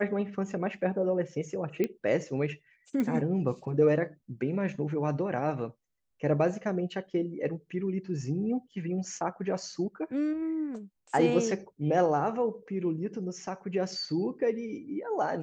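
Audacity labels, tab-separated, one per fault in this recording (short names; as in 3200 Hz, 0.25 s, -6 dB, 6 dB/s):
1.840000	1.840000	pop -17 dBFS
3.000000	3.000000	pop -19 dBFS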